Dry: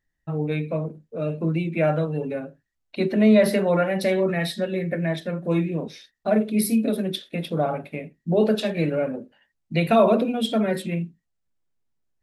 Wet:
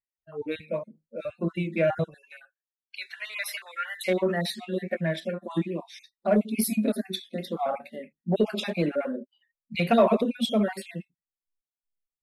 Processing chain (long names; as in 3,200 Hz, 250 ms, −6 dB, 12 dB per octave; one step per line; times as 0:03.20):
time-frequency cells dropped at random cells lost 28%
noise reduction from a noise print of the clip's start 23 dB
0:02.14–0:04.03: high-pass filter 1,300 Hz 24 dB per octave
in parallel at −8 dB: soft clipping −17.5 dBFS, distortion −12 dB
on the sum: tape wow and flutter 41 cents
level −3.5 dB